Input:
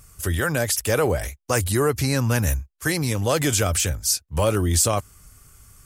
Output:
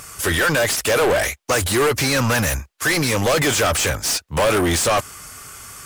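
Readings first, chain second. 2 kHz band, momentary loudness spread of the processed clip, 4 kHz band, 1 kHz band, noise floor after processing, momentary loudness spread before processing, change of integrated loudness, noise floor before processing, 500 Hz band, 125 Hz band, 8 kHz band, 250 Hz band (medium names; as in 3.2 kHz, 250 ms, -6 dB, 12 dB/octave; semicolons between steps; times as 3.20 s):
+8.5 dB, 6 LU, +6.5 dB, +6.5 dB, -61 dBFS, 6 LU, +3.5 dB, -63 dBFS, +4.5 dB, -2.0 dB, +2.0 dB, +2.5 dB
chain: overdrive pedal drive 31 dB, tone 4.2 kHz, clips at -5.5 dBFS; trim -4 dB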